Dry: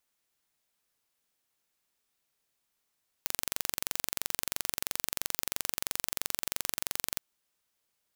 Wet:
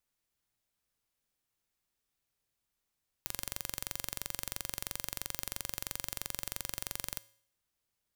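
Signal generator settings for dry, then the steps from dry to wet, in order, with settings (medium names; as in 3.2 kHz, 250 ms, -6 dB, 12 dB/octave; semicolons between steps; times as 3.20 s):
pulse train 23 per s, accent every 0, -3 dBFS 3.93 s
bass shelf 150 Hz +12 dB; feedback comb 110 Hz, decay 0.62 s, harmonics odd, mix 50%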